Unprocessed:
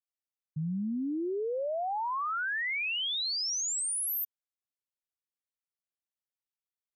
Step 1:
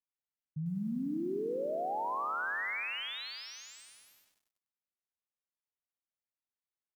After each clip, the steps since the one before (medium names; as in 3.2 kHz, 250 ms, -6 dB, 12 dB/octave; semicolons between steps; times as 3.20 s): low-pass 2.5 kHz 12 dB/octave; delay 84 ms -21.5 dB; bit-crushed delay 98 ms, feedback 80%, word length 10-bit, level -9 dB; trim -3.5 dB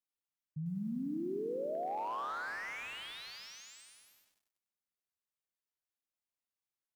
slew-rate limiter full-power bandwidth 22 Hz; trim -2.5 dB